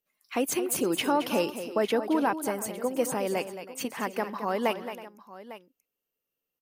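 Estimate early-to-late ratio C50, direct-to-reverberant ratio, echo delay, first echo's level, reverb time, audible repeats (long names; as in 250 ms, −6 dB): no reverb audible, no reverb audible, 221 ms, −11.0 dB, no reverb audible, 3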